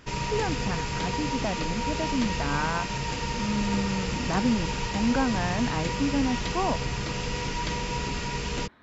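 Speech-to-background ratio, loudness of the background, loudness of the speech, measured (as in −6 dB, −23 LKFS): 0.5 dB, −30.5 LKFS, −30.0 LKFS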